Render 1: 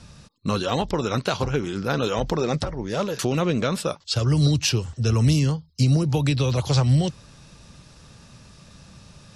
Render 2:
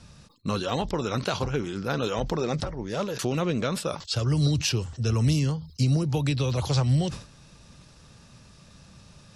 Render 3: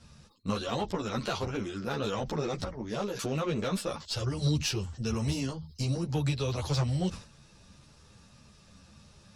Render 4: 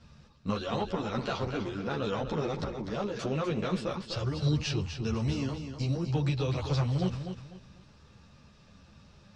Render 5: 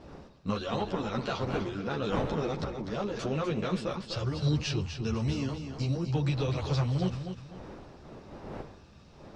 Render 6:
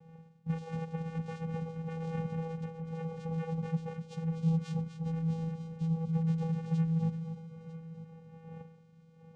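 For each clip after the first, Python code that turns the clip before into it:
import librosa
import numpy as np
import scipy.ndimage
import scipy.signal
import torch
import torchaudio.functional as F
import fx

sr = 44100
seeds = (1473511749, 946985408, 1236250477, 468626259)

y1 = fx.sustainer(x, sr, db_per_s=120.0)
y1 = y1 * 10.0 ** (-4.0 / 20.0)
y2 = fx.cheby_harmonics(y1, sr, harmonics=(8,), levels_db=(-28,), full_scale_db=-11.0)
y2 = fx.ensemble(y2, sr)
y2 = y2 * 10.0 ** (-1.5 / 20.0)
y3 = scipy.ndimage.gaussian_filter1d(y2, 1.5, mode='constant')
y3 = fx.echo_feedback(y3, sr, ms=249, feedback_pct=27, wet_db=-8.5)
y4 = fx.dmg_wind(y3, sr, seeds[0], corner_hz=550.0, level_db=-45.0)
y5 = fx.vocoder(y4, sr, bands=4, carrier='square', carrier_hz=163.0)
y5 = y5 + 10.0 ** (-15.5 / 20.0) * np.pad(y5, (int(949 * sr / 1000.0), 0))[:len(y5)]
y5 = y5 * 10.0 ** (-2.0 / 20.0)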